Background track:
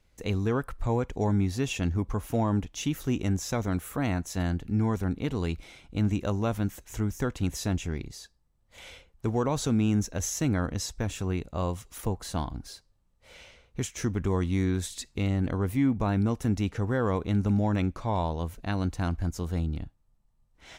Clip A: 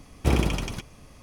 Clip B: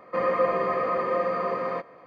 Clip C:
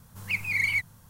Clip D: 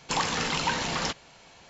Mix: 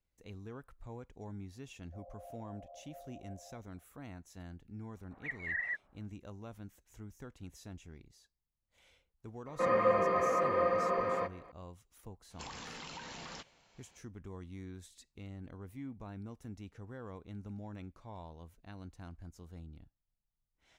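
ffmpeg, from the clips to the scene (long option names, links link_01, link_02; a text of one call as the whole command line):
ffmpeg -i bed.wav -i cue0.wav -i cue1.wav -i cue2.wav -i cue3.wav -filter_complex "[2:a]asplit=2[link_01][link_02];[0:a]volume=-20dB[link_03];[link_01]asuperpass=centerf=670:order=8:qfactor=3.1[link_04];[3:a]highpass=frequency=320:width_type=q:width=0.5412,highpass=frequency=320:width_type=q:width=1.307,lowpass=frequency=2200:width_type=q:width=0.5176,lowpass=frequency=2200:width_type=q:width=0.7071,lowpass=frequency=2200:width_type=q:width=1.932,afreqshift=-290[link_05];[4:a]acompressor=threshold=-29dB:ratio=6:attack=5.5:release=98:knee=1:detection=peak[link_06];[link_04]atrim=end=2.06,asetpts=PTS-STARTPTS,volume=-18dB,afade=type=in:duration=0.004:curve=hsin,afade=type=out:start_time=2.056:duration=0.004:curve=hsin,adelay=1790[link_07];[link_05]atrim=end=1.09,asetpts=PTS-STARTPTS,volume=-7.5dB,afade=type=in:duration=0.004:curve=hsin,afade=type=out:start_time=1.086:duration=0.004:curve=hsin,adelay=4950[link_08];[link_02]atrim=end=2.06,asetpts=PTS-STARTPTS,volume=-4.5dB,afade=type=in:duration=0.004:curve=hsin,afade=type=out:start_time=2.056:duration=0.004:curve=hsin,adelay=417186S[link_09];[link_06]atrim=end=1.69,asetpts=PTS-STARTPTS,volume=-14.5dB,afade=type=in:duration=0.004:curve=hsin,afade=type=out:start_time=1.686:duration=0.004:curve=hsin,adelay=12300[link_10];[link_03][link_07][link_08][link_09][link_10]amix=inputs=5:normalize=0" out.wav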